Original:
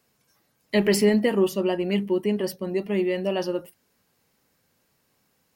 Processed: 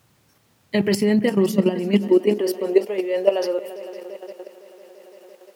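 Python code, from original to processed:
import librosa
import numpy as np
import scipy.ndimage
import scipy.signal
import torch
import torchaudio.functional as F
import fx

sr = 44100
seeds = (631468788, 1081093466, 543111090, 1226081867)

p1 = x + fx.echo_heads(x, sr, ms=170, heads='second and third', feedback_pct=63, wet_db=-18.0, dry=0)
p2 = fx.level_steps(p1, sr, step_db=11)
p3 = fx.dmg_noise_colour(p2, sr, seeds[0], colour='pink', level_db=-65.0)
p4 = fx.rider(p3, sr, range_db=10, speed_s=0.5)
p5 = p3 + (p4 * 10.0 ** (-3.0 / 20.0))
y = fx.filter_sweep_highpass(p5, sr, from_hz=110.0, to_hz=490.0, start_s=1.0, end_s=2.9, q=2.9)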